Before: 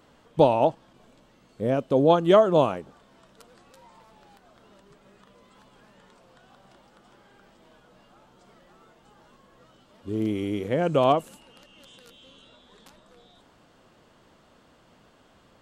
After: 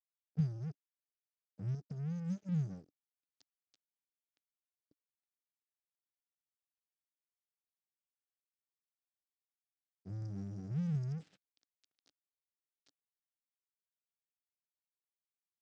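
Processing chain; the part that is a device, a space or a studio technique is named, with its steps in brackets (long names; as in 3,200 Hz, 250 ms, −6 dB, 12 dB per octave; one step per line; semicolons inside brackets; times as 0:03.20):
brick-wall band-stop 200–4,700 Hz
0:01.74–0:02.49: dynamic equaliser 120 Hz, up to −6 dB, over −42 dBFS, Q 0.88
blown loudspeaker (dead-zone distortion −50.5 dBFS; loudspeaker in its box 130–4,600 Hz, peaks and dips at 180 Hz −4 dB, 290 Hz +8 dB, 1,000 Hz −10 dB)
level +1 dB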